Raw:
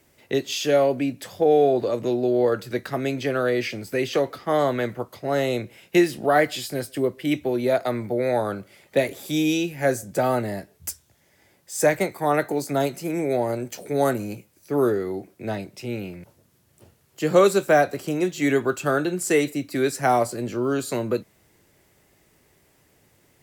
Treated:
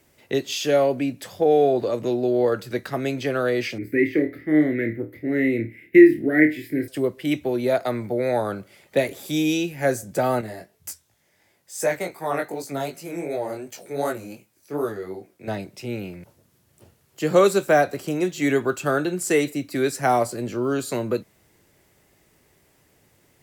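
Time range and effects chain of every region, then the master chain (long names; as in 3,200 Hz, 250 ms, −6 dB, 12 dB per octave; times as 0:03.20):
0:03.78–0:06.88: drawn EQ curve 120 Hz 0 dB, 190 Hz −3 dB, 300 Hz +11 dB, 470 Hz −5 dB, 670 Hz −17 dB, 1,100 Hz −27 dB, 2,000 Hz +9 dB, 3,000 Hz −15 dB, 6,700 Hz −23 dB, 15,000 Hz −5 dB + flutter between parallel walls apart 4.5 metres, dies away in 0.24 s
0:10.41–0:15.48: low-shelf EQ 320 Hz −5.5 dB + chorus effect 2.7 Hz, delay 18 ms, depth 5.2 ms
whole clip: no processing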